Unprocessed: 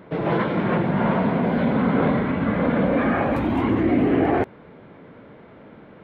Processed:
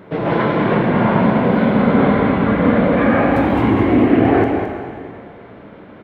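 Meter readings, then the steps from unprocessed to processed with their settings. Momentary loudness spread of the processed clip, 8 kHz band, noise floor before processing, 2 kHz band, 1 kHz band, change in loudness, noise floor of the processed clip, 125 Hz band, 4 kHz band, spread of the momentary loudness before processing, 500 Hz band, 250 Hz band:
9 LU, can't be measured, −46 dBFS, +6.5 dB, +6.5 dB, +6.5 dB, −39 dBFS, +6.0 dB, +6.5 dB, 3 LU, +6.5 dB, +6.5 dB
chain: single-tap delay 215 ms −8 dB
dense smooth reverb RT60 2.1 s, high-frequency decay 0.95×, DRR 2.5 dB
level +4 dB

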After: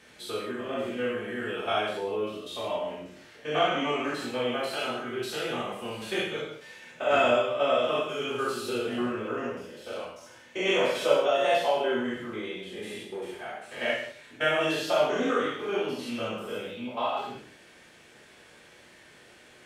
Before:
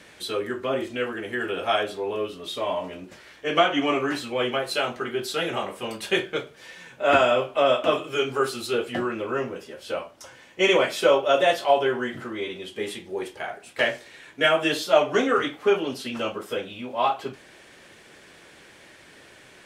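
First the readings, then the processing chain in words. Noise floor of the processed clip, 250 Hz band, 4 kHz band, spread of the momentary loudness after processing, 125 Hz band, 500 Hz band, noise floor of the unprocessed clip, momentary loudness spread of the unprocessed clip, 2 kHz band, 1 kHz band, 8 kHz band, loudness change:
−54 dBFS, −3.5 dB, −4.5 dB, 14 LU, −3.5 dB, −4.0 dB, −51 dBFS, 13 LU, −5.0 dB, −4.5 dB, −5.0 dB, −4.5 dB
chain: spectrum averaged block by block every 100 ms
reverb whose tail is shaped and stops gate 230 ms falling, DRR −4.5 dB
level −8 dB

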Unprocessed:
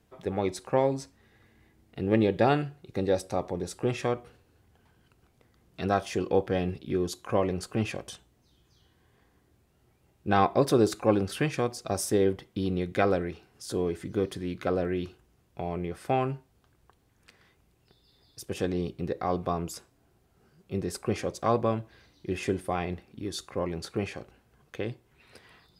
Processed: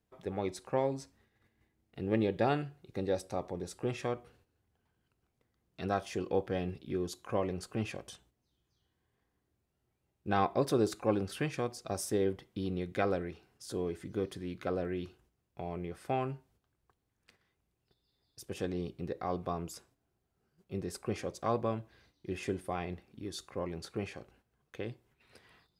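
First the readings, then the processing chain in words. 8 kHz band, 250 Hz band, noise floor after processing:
−6.5 dB, −6.5 dB, −81 dBFS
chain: noise gate −59 dBFS, range −8 dB
level −6.5 dB

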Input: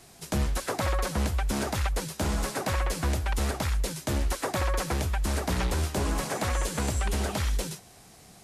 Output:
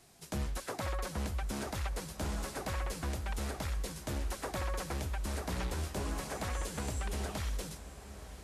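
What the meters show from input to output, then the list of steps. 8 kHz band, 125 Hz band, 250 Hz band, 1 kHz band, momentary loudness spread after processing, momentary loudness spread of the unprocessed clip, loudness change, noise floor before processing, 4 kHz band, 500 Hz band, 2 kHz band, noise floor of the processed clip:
−9.0 dB, −8.5 dB, −8.5 dB, −9.0 dB, 2 LU, 2 LU, −9.0 dB, −53 dBFS, −9.0 dB, −8.5 dB, −9.0 dB, −51 dBFS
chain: feedback delay with all-pass diffusion 980 ms, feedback 58%, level −14 dB
level −9 dB

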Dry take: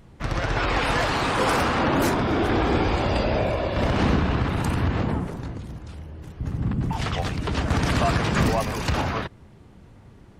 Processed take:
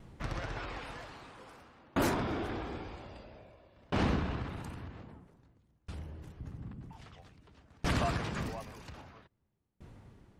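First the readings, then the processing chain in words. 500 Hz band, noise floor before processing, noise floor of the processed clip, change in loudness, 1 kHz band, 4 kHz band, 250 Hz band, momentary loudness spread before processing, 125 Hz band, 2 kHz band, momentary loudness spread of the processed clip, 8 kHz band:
−15.0 dB, −49 dBFS, −76 dBFS, −13.0 dB, −15.5 dB, −15.0 dB, −13.5 dB, 12 LU, −15.0 dB, −15.0 dB, 23 LU, −13.0 dB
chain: in parallel at −2.5 dB: downward compressor, threshold −34 dBFS, peak gain reduction 16.5 dB
on the sum: tremolo with a ramp in dB decaying 0.51 Hz, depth 34 dB
level −7.5 dB

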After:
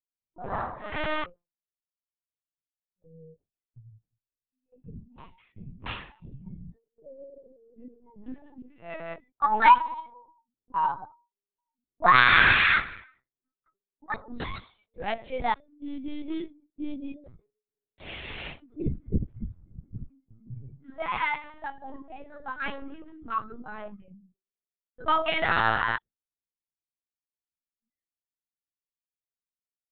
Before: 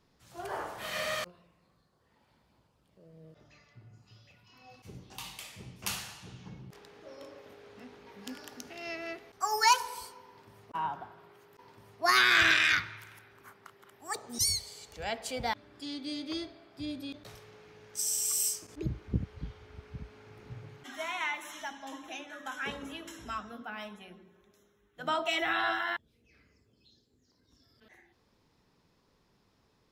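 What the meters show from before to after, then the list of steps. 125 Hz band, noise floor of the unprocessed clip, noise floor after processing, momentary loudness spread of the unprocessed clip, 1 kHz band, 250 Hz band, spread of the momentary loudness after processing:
+4.5 dB, −71 dBFS, below −85 dBFS, 23 LU, +8.0 dB, +4.5 dB, 25 LU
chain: noise reduction from a noise print of the clip's start 26 dB
low-pass that shuts in the quiet parts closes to 470 Hz, open at −27.5 dBFS
noise gate with hold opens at −57 dBFS
dynamic equaliser 1,100 Hz, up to +5 dB, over −44 dBFS, Q 2.6
in parallel at −10.5 dB: decimation without filtering 8×
on the sum: high-frequency loss of the air 61 metres
linear-prediction vocoder at 8 kHz pitch kept
level +3.5 dB

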